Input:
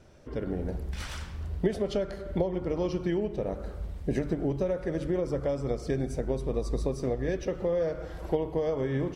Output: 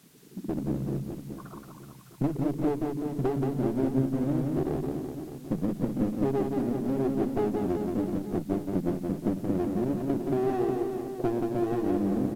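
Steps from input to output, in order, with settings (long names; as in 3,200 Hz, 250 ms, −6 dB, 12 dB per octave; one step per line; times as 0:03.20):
spectral envelope exaggerated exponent 3
Chebyshev band-pass filter 180–2,000 Hz, order 5
in parallel at −1 dB: downward compressor, threshold −36 dBFS, peak gain reduction 14 dB
on the sum: asymmetric clip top −33.5 dBFS
background noise white −63 dBFS
on a send: reverse bouncing-ball delay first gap 130 ms, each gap 1.15×, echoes 5
on the sum: wrong playback speed 45 rpm record played at 33 rpm
level +1.5 dB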